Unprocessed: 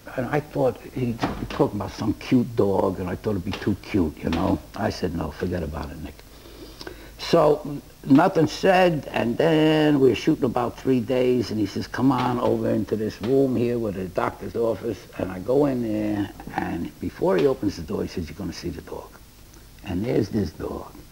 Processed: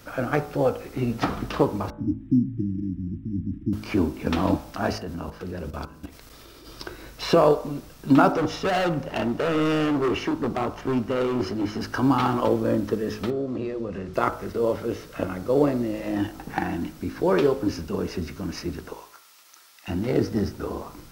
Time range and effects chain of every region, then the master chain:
0:01.90–0:03.73: linear-phase brick-wall band-stop 340–7,100 Hz + high-frequency loss of the air 110 metres + linearly interpolated sample-rate reduction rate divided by 8×
0:04.98–0:06.67: output level in coarse steps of 16 dB + one half of a high-frequency compander encoder only
0:08.32–0:11.81: high-shelf EQ 5,700 Hz −8.5 dB + hard clipping −20 dBFS
0:13.30–0:14.14: mains-hum notches 60/120/180/240 Hz + downward compressor 2.5 to 1, threshold −27 dBFS + high-frequency loss of the air 93 metres
0:18.93–0:19.88: high-pass filter 1,000 Hz + notch filter 1,500 Hz, Q 13
whole clip: parametric band 1,300 Hz +7.5 dB 0.22 octaves; hum removal 53.24 Hz, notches 29

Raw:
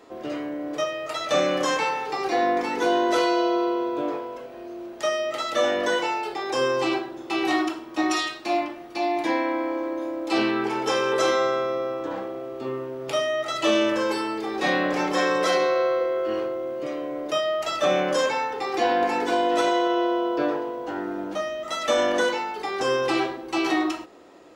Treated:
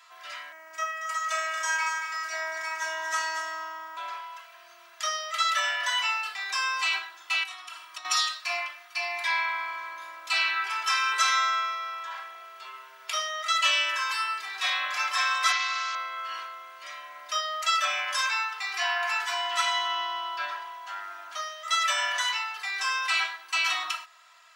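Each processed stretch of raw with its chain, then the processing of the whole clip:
0:00.52–0:03.97: phases set to zero 320 Hz + single-tap delay 231 ms −7 dB
0:07.43–0:08.05: parametric band 9,300 Hz +7.5 dB 0.24 octaves + downward compressor 10 to 1, threshold −32 dBFS
0:15.52–0:15.95: linear delta modulator 32 kbit/s, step −30.5 dBFS + high-pass filter 1,100 Hz 6 dB per octave
whole clip: high-pass filter 1,200 Hz 24 dB per octave; comb filter 3 ms, depth 86%; level +1 dB

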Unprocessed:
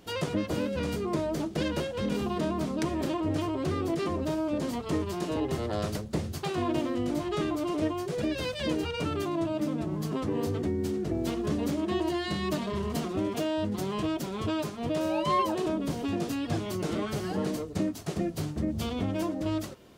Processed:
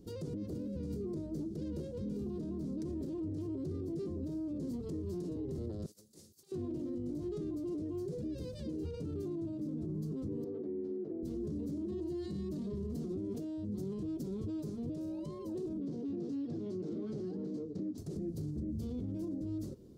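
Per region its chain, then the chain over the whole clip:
0:05.86–0:06.52: first difference + compressor whose output falls as the input rises −50 dBFS, ratio −0.5
0:10.44–0:11.23: band-pass filter 450–2,800 Hz + high-shelf EQ 2,200 Hz −11 dB
0:15.80–0:17.98: phase distortion by the signal itself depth 0.098 ms + band-pass filter 190–5,800 Hz + high-shelf EQ 4,600 Hz −5 dB
whole clip: tilt shelving filter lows +6.5 dB; brickwall limiter −27 dBFS; flat-topped bell 1,400 Hz −15.5 dB 2.7 octaves; level −4.5 dB

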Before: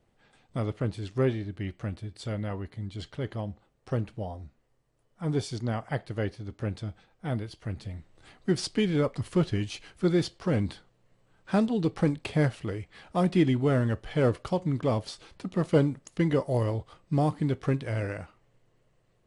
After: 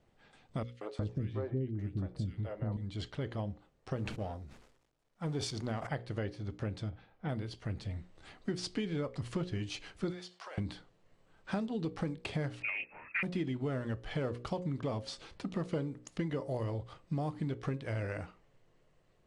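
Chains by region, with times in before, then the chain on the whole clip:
0:00.63–0:02.77: tilt shelving filter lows +6 dB, about 790 Hz + three-band delay without the direct sound highs, mids, lows 180/360 ms, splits 450/1,900 Hz
0:03.97–0:05.87: mu-law and A-law mismatch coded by A + level that may fall only so fast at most 72 dB per second
0:06.89–0:07.29: high-frequency loss of the air 200 metres + double-tracking delay 36 ms −8 dB
0:10.10–0:10.58: high-pass filter 650 Hz 24 dB per octave + downward compressor, threshold −43 dBFS
0:12.62–0:13.23: voice inversion scrambler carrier 2,600 Hz + highs frequency-modulated by the lows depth 0.19 ms
whole clip: low-pass filter 7,900 Hz 12 dB per octave; mains-hum notches 60/120/180/240/300/360/420/480/540 Hz; downward compressor 5 to 1, threshold −33 dBFS

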